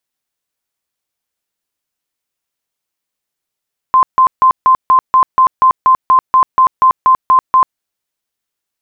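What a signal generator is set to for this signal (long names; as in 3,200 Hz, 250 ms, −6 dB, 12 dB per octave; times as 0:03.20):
tone bursts 1,040 Hz, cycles 93, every 0.24 s, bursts 16, −4.5 dBFS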